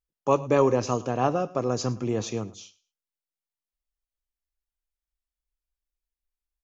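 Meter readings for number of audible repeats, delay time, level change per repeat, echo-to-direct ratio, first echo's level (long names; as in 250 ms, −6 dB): 2, 107 ms, −13.5 dB, −20.0 dB, −20.0 dB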